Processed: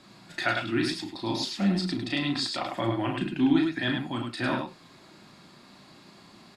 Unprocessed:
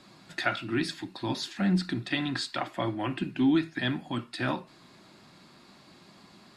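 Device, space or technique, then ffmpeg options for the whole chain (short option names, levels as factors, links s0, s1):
slapback doubling: -filter_complex "[0:a]asettb=1/sr,asplit=3[s0][s1][s2];[s0]atrim=end=0.864[s3];[s1]atrim=start=0.86:end=2.7,asetpts=PTS-STARTPTS,afade=t=in:d=0.004:c=qsin,afade=t=out:st=1.836:d=0.004:c=qsin,equalizer=f=125:t=o:w=0.33:g=-6,equalizer=f=1600:t=o:w=0.33:g=-10,equalizer=f=5000:t=o:w=0.33:g=5[s4];[s2]atrim=start=2.696[s5];[s3][s4]acrossfade=d=0.004:c1=hsin:c2=qsin[s6];[s6][s5]acrossfade=d=0.004:c1=qsin:c2=hsin,asplit=3[s7][s8][s9];[s8]adelay=35,volume=0.596[s10];[s9]adelay=103,volume=0.596[s11];[s7][s10][s11]amix=inputs=3:normalize=0"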